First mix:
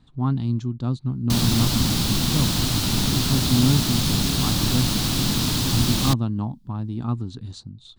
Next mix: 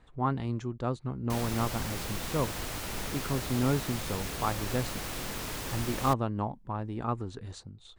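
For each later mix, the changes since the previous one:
background -11.0 dB; master: add ten-band EQ 125 Hz -9 dB, 250 Hz -9 dB, 500 Hz +9 dB, 2000 Hz +8 dB, 4000 Hz -10 dB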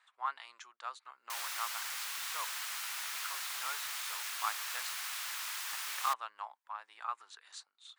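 master: add HPF 1100 Hz 24 dB/oct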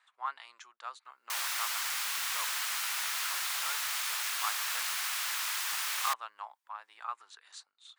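background +6.0 dB

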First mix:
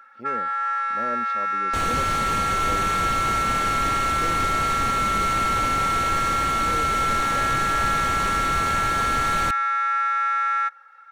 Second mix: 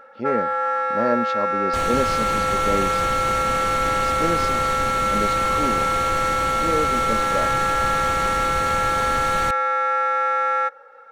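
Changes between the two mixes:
speech +11.5 dB; first sound: remove HPF 1100 Hz 24 dB/oct

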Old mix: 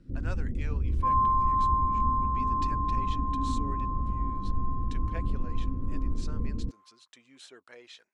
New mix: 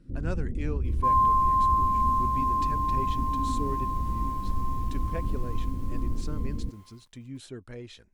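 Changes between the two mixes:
speech: remove BPF 710–7700 Hz; second sound: remove band-pass 1200 Hz, Q 3.6

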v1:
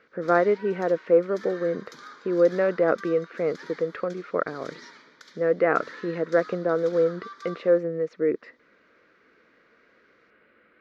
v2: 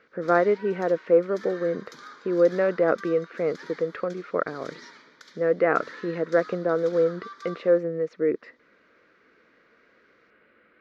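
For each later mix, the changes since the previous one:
none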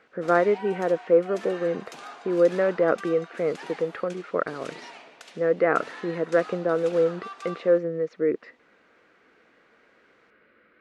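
background: remove fixed phaser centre 2700 Hz, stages 6

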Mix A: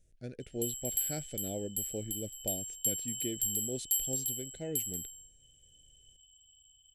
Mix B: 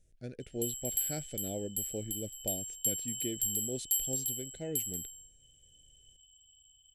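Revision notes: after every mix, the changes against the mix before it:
none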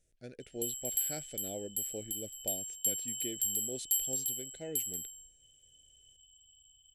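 speech: add low shelf 260 Hz -10 dB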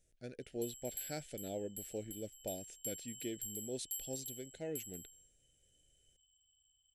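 background -12.0 dB

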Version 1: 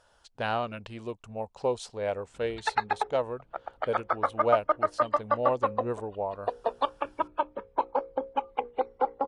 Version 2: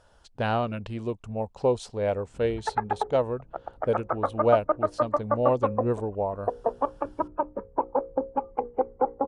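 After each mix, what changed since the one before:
background: add Gaussian blur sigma 5.2 samples; master: add low shelf 460 Hz +10 dB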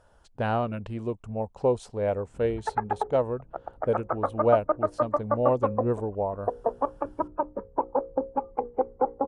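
master: add bell 4200 Hz -7.5 dB 1.7 oct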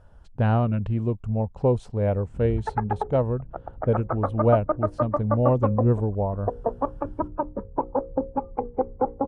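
master: add tone controls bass +12 dB, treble -7 dB

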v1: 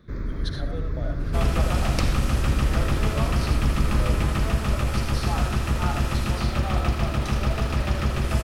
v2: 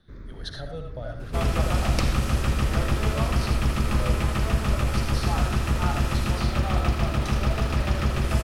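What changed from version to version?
first sound -11.0 dB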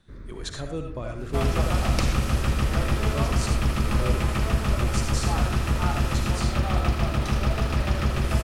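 speech: remove fixed phaser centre 1600 Hz, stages 8

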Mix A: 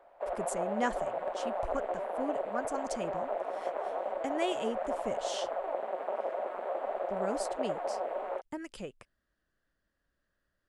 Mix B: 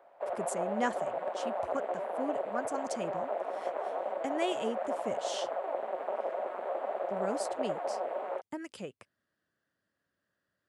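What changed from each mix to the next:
master: add HPF 97 Hz 24 dB/oct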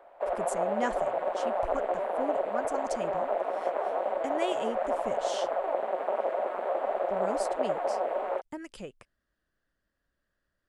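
background +5.0 dB; master: remove HPF 97 Hz 24 dB/oct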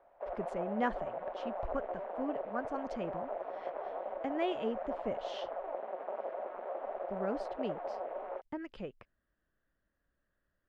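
background -9.0 dB; master: add air absorption 300 m

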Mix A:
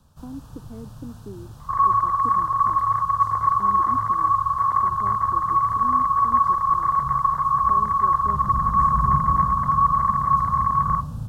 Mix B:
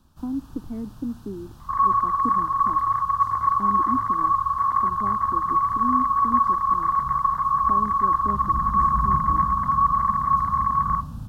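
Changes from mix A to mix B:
speech +7.5 dB; master: add graphic EQ 125/250/500/8000 Hz -7/+4/-8/-4 dB

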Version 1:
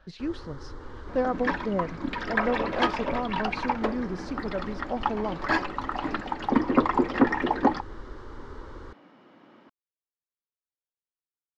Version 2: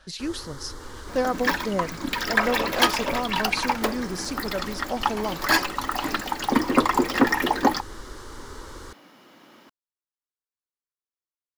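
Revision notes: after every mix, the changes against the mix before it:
master: remove tape spacing loss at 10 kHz 32 dB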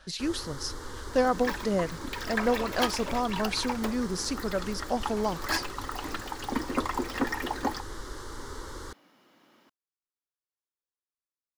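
second sound -10.0 dB

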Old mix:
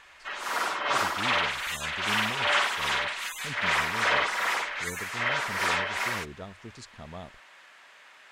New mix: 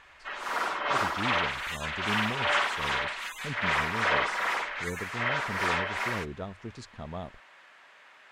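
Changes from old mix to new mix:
speech +4.0 dB; master: add high shelf 3800 Hz -9 dB

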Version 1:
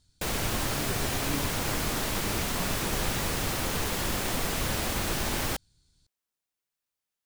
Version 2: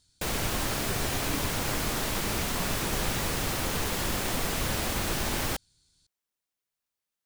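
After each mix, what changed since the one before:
speech: add tilt +1.5 dB/oct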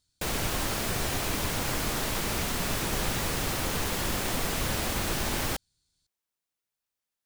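speech -8.5 dB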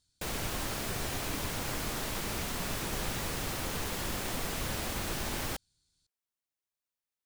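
background -5.5 dB

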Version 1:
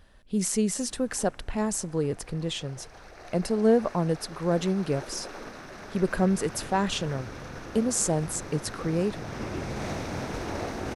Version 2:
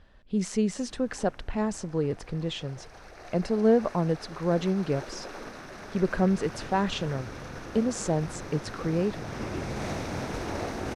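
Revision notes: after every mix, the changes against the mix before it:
speech: add air absorption 110 m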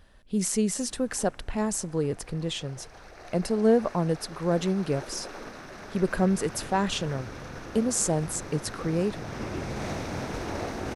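speech: remove air absorption 110 m

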